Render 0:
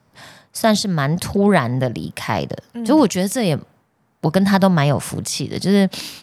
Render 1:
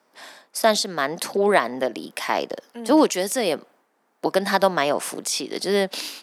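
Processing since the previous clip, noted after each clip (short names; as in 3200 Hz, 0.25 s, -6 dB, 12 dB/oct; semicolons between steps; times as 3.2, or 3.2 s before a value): HPF 290 Hz 24 dB/oct; gain -1 dB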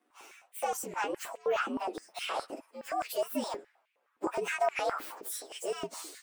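inharmonic rescaling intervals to 119%; limiter -19.5 dBFS, peak gain reduction 11.5 dB; stepped high-pass 9.6 Hz 290–2400 Hz; gain -8 dB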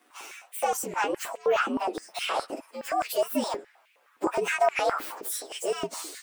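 mismatched tape noise reduction encoder only; gain +6 dB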